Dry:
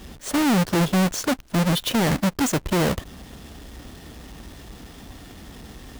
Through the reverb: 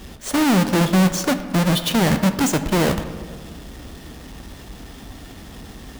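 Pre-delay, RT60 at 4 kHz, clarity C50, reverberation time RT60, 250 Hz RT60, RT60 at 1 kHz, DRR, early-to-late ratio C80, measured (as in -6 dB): 9 ms, 0.90 s, 10.5 dB, 1.6 s, 2.0 s, 1.5 s, 9.0 dB, 12.0 dB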